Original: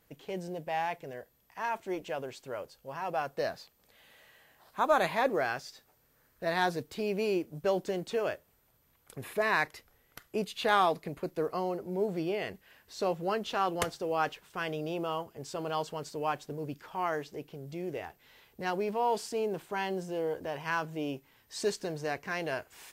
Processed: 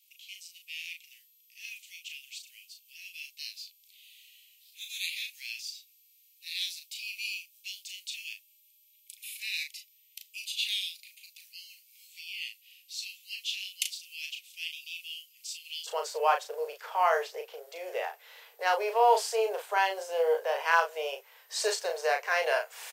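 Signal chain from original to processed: steep high-pass 2.4 kHz 72 dB/octave, from 15.86 s 450 Hz; doubling 36 ms -5.5 dB; trim +6.5 dB

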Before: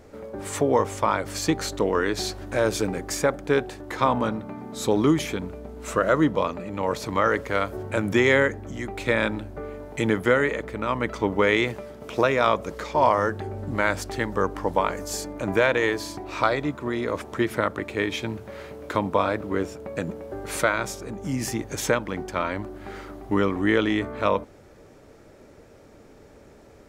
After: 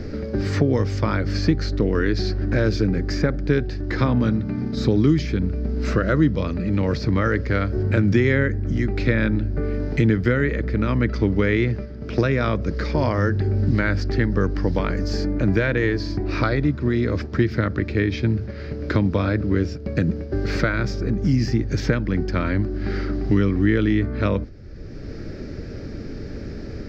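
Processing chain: RIAA curve playback; gate -30 dBFS, range -6 dB; FFT filter 340 Hz 0 dB, 960 Hz -12 dB, 1.6 kHz +3 dB, 3.4 kHz 0 dB, 4.9 kHz +14 dB, 9.9 kHz -21 dB, 14 kHz -1 dB; three bands compressed up and down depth 70%

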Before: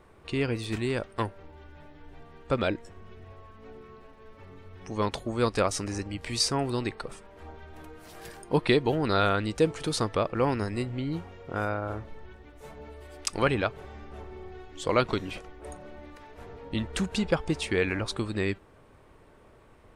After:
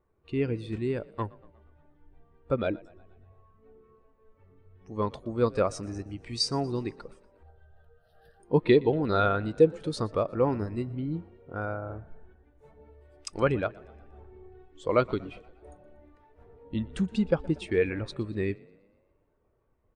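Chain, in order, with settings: 7.43–8.40 s: static phaser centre 1.5 kHz, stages 8; frequency-shifting echo 119 ms, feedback 64%, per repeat +33 Hz, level -16.5 dB; spectral contrast expander 1.5:1

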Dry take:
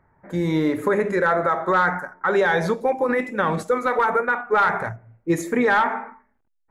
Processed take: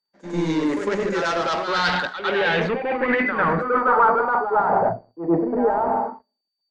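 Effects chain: high-pass 180 Hz 24 dB/octave; bass shelf 300 Hz +2.5 dB; reverse; compression 8:1, threshold -27 dBFS, peak gain reduction 13 dB; reverse; waveshaping leveller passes 3; resampled via 22.05 kHz; low-pass sweep 6.4 kHz -> 690 Hz, 1.25–4.99 s; whistle 4.6 kHz -56 dBFS; on a send: reverse echo 101 ms -5.5 dB; on the sum: three bands expanded up and down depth 70%

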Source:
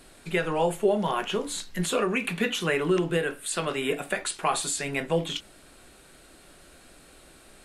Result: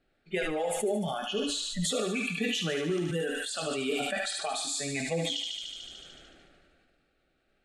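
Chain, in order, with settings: dynamic bell 1.4 kHz, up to -6 dB, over -41 dBFS, Q 0.79; level-controlled noise filter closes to 2.8 kHz, open at -20 dBFS; spectral noise reduction 20 dB; compression, threshold -28 dBFS, peak gain reduction 9.5 dB; Butterworth band-stop 1 kHz, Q 3.5; thinning echo 74 ms, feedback 71%, high-pass 920 Hz, level -5 dB; decay stretcher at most 23 dB/s

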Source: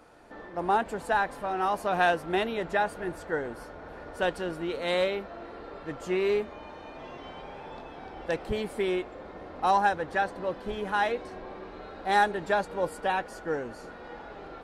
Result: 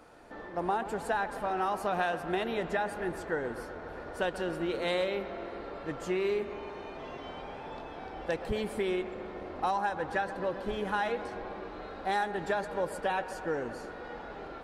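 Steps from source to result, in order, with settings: compression, threshold -27 dBFS, peak gain reduction 9 dB; on a send: feedback echo behind a low-pass 131 ms, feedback 73%, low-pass 2.5 kHz, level -13 dB

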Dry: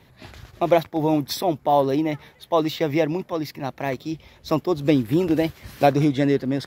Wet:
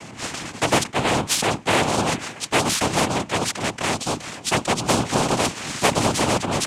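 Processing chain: octave divider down 2 oct, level +4 dB; noise-vocoded speech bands 4; spectrum-flattening compressor 2:1; trim -2 dB

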